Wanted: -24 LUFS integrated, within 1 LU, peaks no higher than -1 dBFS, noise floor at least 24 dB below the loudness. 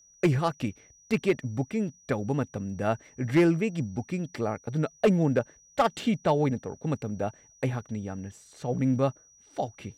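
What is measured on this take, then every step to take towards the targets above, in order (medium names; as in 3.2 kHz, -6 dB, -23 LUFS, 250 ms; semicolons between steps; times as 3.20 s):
clipped samples 0.4%; clipping level -15.0 dBFS; steady tone 5.8 kHz; tone level -56 dBFS; loudness -28.5 LUFS; peak level -15.0 dBFS; loudness target -24.0 LUFS
-> clip repair -15 dBFS; band-stop 5.8 kHz, Q 30; trim +4.5 dB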